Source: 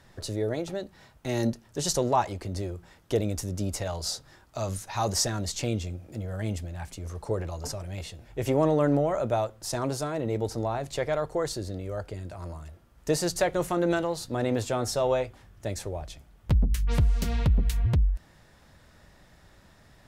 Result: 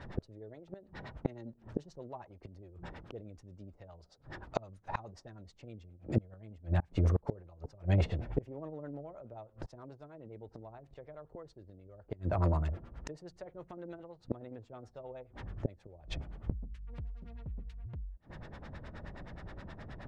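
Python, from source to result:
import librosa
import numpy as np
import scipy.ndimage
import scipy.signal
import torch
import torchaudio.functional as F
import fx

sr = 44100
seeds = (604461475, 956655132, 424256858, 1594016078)

y = fx.gate_flip(x, sr, shuts_db=-26.0, range_db=-30)
y = fx.filter_lfo_lowpass(y, sr, shape='sine', hz=9.5, low_hz=380.0, high_hz=3800.0, q=0.71)
y = y * librosa.db_to_amplitude(10.0)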